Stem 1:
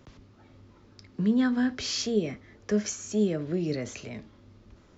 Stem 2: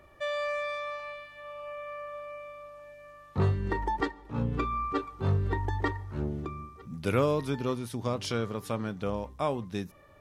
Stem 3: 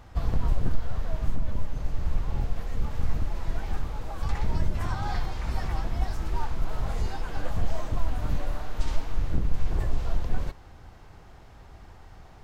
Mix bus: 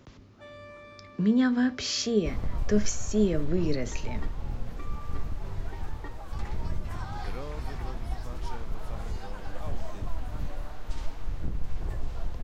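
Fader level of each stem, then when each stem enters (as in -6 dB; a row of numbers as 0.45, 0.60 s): +1.0, -15.5, -6.0 dB; 0.00, 0.20, 2.10 s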